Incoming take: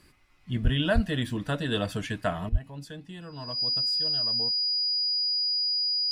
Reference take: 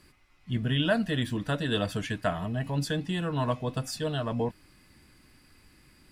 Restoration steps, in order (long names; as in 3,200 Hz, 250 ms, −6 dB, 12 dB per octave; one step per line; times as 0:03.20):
notch filter 4,900 Hz, Q 30
high-pass at the plosives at 0:00.63/0:00.94/0:02.51
level 0 dB, from 0:02.49 +11.5 dB